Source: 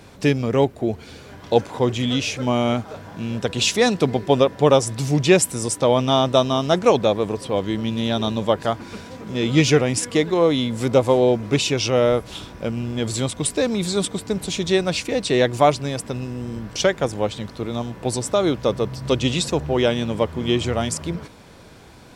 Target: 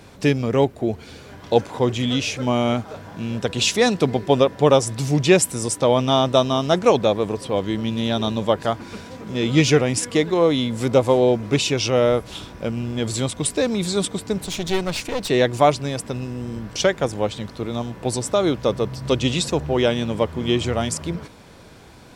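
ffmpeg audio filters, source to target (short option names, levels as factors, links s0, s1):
-filter_complex "[0:a]asettb=1/sr,asplit=3[s0][s1][s2];[s0]atrim=end=14.414[s3];[s1]atrim=start=14.41:end=15.29,asetpts=PTS-STARTPTS,afade=t=in:d=0.004:c=qsin,afade=t=out:st=0.876:d=0.004:c=qsin,aeval=exprs='clip(val(0),-1,0.0335)':c=same[s4];[s2]atrim=start=15.286[s5];[s3][s4]acrossfade=d=0.004:c1=hsin:c2=qsin[s6];[s6][s5]acrossfade=d=0.004:c1=qsin:c2=hsin"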